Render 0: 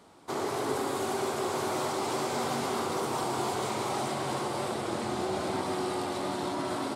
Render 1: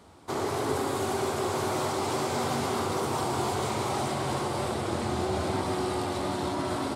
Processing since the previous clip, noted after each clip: bell 75 Hz +14.5 dB 1 oct; gain +1.5 dB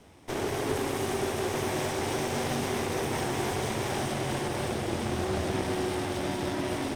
minimum comb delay 0.34 ms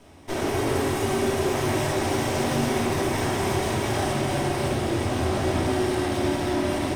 reverb RT60 0.90 s, pre-delay 3 ms, DRR -1 dB; gain +1.5 dB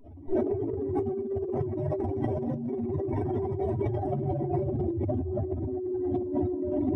spectral contrast raised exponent 2.8; negative-ratio compressor -28 dBFS, ratio -0.5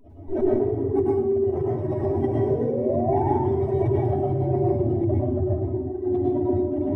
painted sound rise, 2.32–3.28, 360–920 Hz -31 dBFS; plate-style reverb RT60 0.61 s, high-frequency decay 0.95×, pre-delay 90 ms, DRR -3.5 dB

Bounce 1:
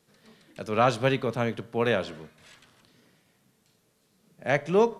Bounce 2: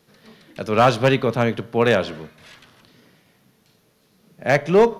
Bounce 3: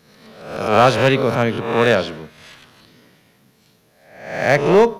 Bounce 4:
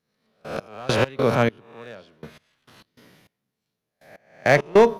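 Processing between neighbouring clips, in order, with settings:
bell 8000 Hz -9 dB 0.47 oct; hard clip -15 dBFS, distortion -18 dB; gain +8 dB
spectral swells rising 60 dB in 0.72 s; attack slew limiter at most 100 dB/s; gain +1 dB
step gate "...x..x.xx.." 101 bpm -24 dB; gain -1.5 dB

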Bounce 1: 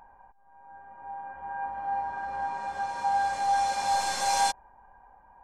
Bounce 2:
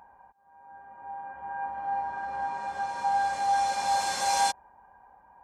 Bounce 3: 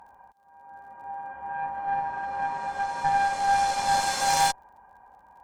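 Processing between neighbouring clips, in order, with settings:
HPF 70 Hz
added harmonics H 6 -15 dB, 8 -22 dB, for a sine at -14 dBFS; crackle 37/s -57 dBFS; gain +2.5 dB

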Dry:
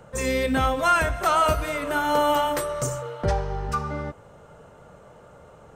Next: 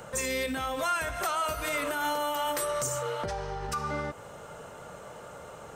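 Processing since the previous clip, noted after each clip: compressor 6:1, threshold -31 dBFS, peak gain reduction 14.5 dB; limiter -27.5 dBFS, peak gain reduction 6 dB; tilt +2 dB/oct; gain +5.5 dB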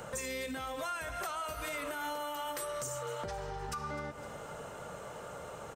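feedback echo 0.254 s, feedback 40%, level -16 dB; compressor 3:1, threshold -38 dBFS, peak gain reduction 9.5 dB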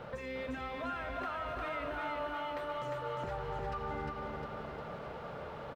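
bit-crush 8-bit; air absorption 370 m; feedback echo 0.354 s, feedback 56%, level -3 dB

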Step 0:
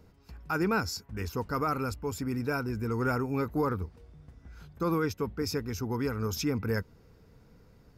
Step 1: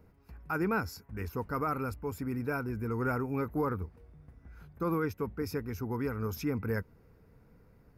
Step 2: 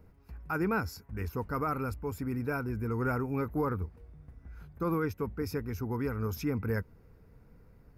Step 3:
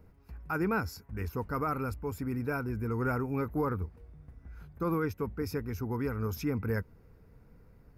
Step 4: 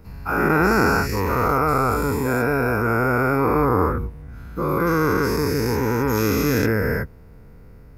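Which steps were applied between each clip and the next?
band shelf 4900 Hz -9 dB; gain -2.5 dB
low shelf 69 Hz +7.5 dB
nothing audible
spectral dilation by 0.48 s; gain +6 dB

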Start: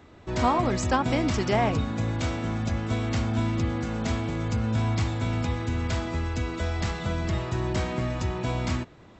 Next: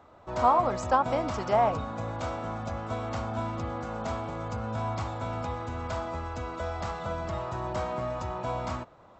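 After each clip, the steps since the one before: band shelf 840 Hz +11.5 dB; gain -9 dB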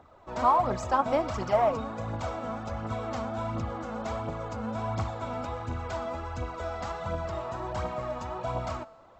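phaser 1.4 Hz, delay 4.6 ms, feedback 50%; resonator 220 Hz, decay 1.2 s, mix 50%; gain +3.5 dB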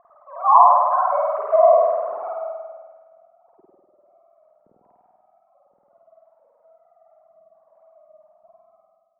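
sine-wave speech; low-pass sweep 1100 Hz -> 190 Hz, 2.23–2.91; spring tank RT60 1.4 s, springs 49 ms, chirp 70 ms, DRR -4.5 dB; gain -2 dB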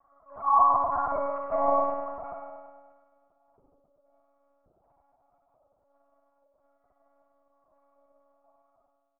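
echo 79 ms -12 dB; monotone LPC vocoder at 8 kHz 280 Hz; gain -9 dB

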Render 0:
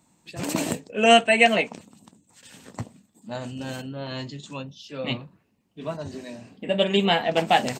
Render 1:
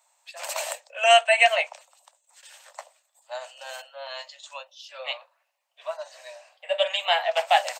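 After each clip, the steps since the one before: steep high-pass 550 Hz 96 dB/oct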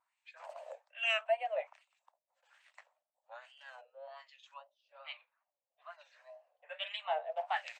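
wow and flutter 110 cents; wah 1.2 Hz 430–2500 Hz, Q 2.5; gain -7.5 dB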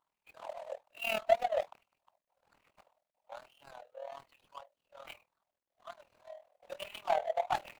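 median filter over 25 samples; AM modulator 40 Hz, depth 65%; gain +9 dB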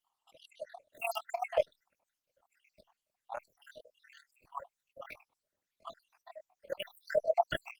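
random spectral dropouts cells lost 76%; gain +7.5 dB; Opus 32 kbps 48000 Hz

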